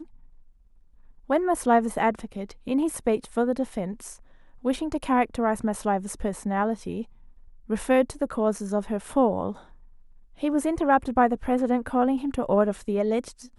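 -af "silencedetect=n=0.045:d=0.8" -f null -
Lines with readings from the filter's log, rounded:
silence_start: 0.00
silence_end: 1.30 | silence_duration: 1.30
silence_start: 9.51
silence_end: 10.43 | silence_duration: 0.92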